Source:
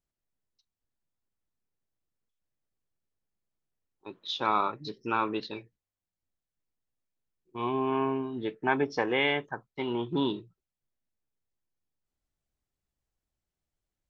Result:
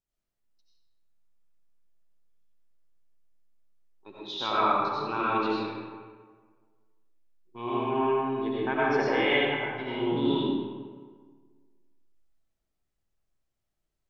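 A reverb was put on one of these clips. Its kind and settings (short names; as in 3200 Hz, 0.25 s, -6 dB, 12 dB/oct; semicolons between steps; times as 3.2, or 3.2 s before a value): digital reverb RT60 1.6 s, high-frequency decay 0.6×, pre-delay 50 ms, DRR -8 dB; gain -5.5 dB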